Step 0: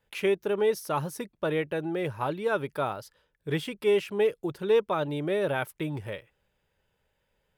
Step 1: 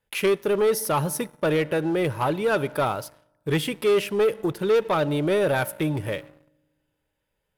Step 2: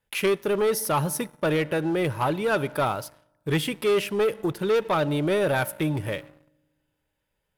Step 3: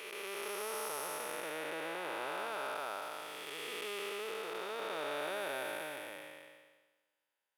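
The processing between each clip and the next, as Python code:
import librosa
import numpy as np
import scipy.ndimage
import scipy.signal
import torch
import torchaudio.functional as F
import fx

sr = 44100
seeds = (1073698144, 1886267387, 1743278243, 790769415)

y1 = fx.peak_eq(x, sr, hz=11000.0, db=7.0, octaves=0.58)
y1 = fx.rev_fdn(y1, sr, rt60_s=1.3, lf_ratio=1.4, hf_ratio=0.65, size_ms=10.0, drr_db=19.5)
y1 = fx.leveller(y1, sr, passes=2)
y2 = fx.peak_eq(y1, sr, hz=460.0, db=-2.5, octaves=0.7)
y3 = fx.spec_blur(y2, sr, span_ms=718.0)
y3 = scipy.signal.sosfilt(scipy.signal.butter(2, 730.0, 'highpass', fs=sr, output='sos'), y3)
y3 = y3 * librosa.db_to_amplitude(-3.5)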